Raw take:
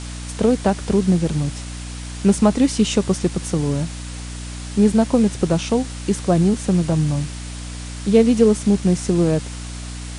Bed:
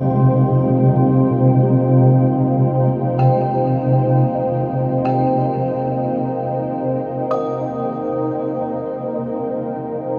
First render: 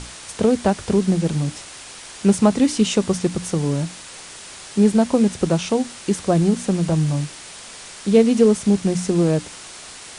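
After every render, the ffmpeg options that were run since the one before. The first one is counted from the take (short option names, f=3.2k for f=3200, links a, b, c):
-af "bandreject=f=60:t=h:w=6,bandreject=f=120:t=h:w=6,bandreject=f=180:t=h:w=6,bandreject=f=240:t=h:w=6,bandreject=f=300:t=h:w=6"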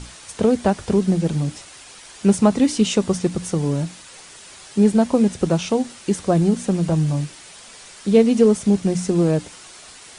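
-af "afftdn=nr=6:nf=-39"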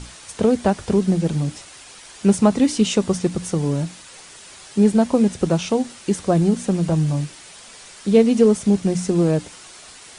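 -af anull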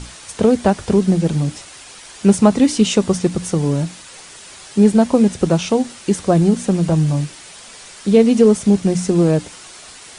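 -af "volume=3.5dB,alimiter=limit=-1dB:level=0:latency=1"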